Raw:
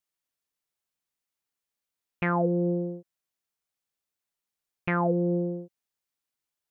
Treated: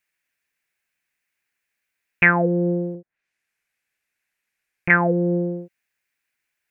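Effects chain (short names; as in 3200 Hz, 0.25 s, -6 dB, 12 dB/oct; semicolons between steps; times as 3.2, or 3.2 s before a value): 2.94–4.9 treble ducked by the level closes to 810 Hz, closed at -43 dBFS; band shelf 2000 Hz +13 dB 1 oct; gain +5 dB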